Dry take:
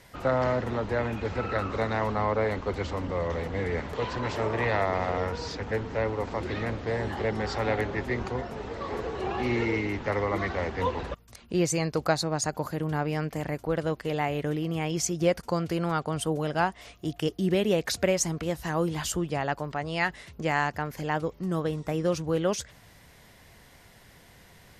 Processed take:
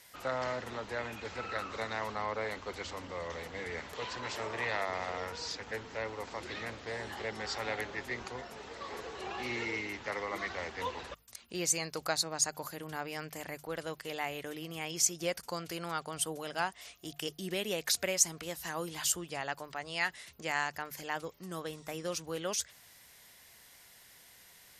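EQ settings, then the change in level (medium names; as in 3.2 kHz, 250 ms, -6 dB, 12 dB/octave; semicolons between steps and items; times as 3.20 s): tilt EQ +3.5 dB/octave; bass shelf 75 Hz +8 dB; hum notches 50/100/150 Hz; -7.5 dB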